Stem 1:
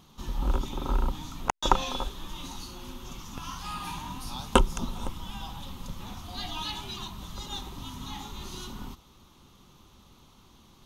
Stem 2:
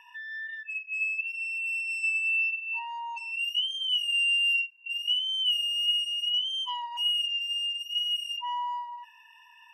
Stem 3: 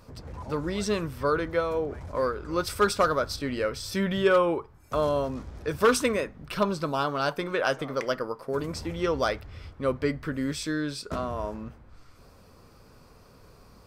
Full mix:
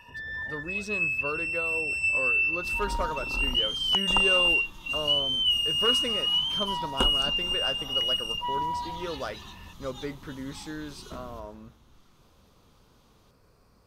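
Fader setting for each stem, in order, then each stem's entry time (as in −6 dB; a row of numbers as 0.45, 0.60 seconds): −7.5, +2.0, −8.5 decibels; 2.45, 0.00, 0.00 seconds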